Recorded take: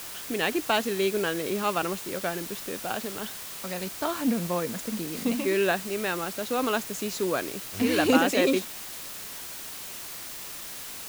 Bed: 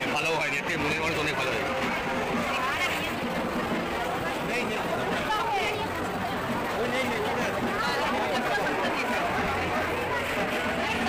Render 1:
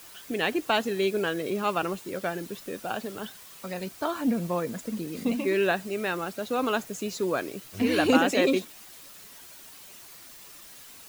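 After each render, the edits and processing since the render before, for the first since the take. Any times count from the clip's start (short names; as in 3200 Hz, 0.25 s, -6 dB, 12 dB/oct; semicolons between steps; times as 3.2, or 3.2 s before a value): denoiser 10 dB, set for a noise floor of -39 dBFS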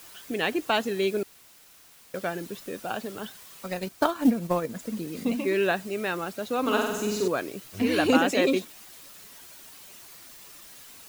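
1.23–2.14 room tone; 3.64–4.8 transient shaper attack +9 dB, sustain -5 dB; 6.61–7.28 flutter echo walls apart 8.2 m, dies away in 1 s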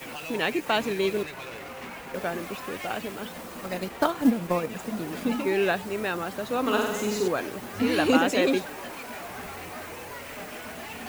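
add bed -11.5 dB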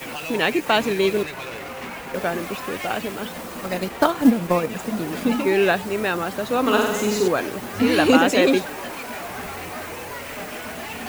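gain +6 dB; limiter -2 dBFS, peak gain reduction 1.5 dB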